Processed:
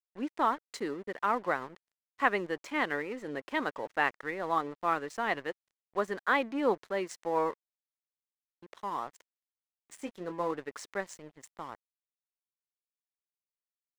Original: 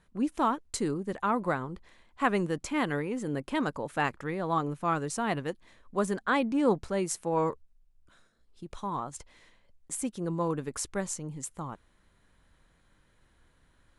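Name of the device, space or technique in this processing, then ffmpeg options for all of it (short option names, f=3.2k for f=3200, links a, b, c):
pocket radio on a weak battery: -filter_complex "[0:a]asettb=1/sr,asplit=3[a][b][c];[a]atrim=end=9.964[d];[b]atrim=start=9.96:end=10.52,asetpts=PTS-STARTPTS,afade=t=in:d=0.004:c=qsin,afade=t=out:st=0.556:d=0.004:c=qsin,asplit=2[e][f];[f]adelay=22,volume=-9dB[g];[e][g]amix=inputs=2:normalize=0,atrim=end_sample=24696[h];[c]atrim=start=10.516[i];[d][h]acrossfade=d=0.004:c1=hsin:c2=qsin[j];[j][i]acrossfade=d=0.004:c1=qsin:c2=hsin,highpass=360,lowpass=4.5k,aeval=exprs='sgn(val(0))*max(abs(val(0))-0.00299,0)':c=same,equalizer=f=1.9k:t=o:w=0.31:g=6"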